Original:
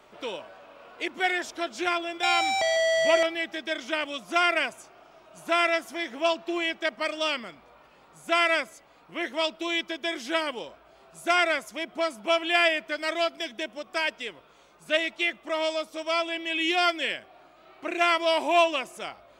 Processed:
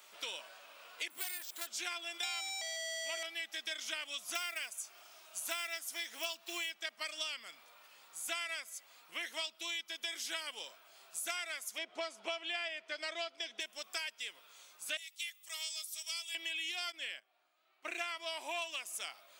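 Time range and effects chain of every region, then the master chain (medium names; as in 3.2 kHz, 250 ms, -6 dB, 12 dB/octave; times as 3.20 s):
1.10–1.67 s: careless resampling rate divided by 4×, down filtered, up hold + transformer saturation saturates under 3.3 kHz
4.35–6.74 s: block-companded coder 7-bit + peaking EQ 9.5 kHz +3.5 dB 2.3 oct
11.78–13.60 s: low-pass 5.3 kHz + peaking EQ 480 Hz +8.5 dB 1.7 oct
14.97–16.35 s: differentiator + band-stop 1.5 kHz, Q 11
16.92–18.62 s: gate -41 dBFS, range -14 dB + treble shelf 3.6 kHz -8.5 dB
whole clip: differentiator; compression 6:1, threshold -46 dBFS; trim +9 dB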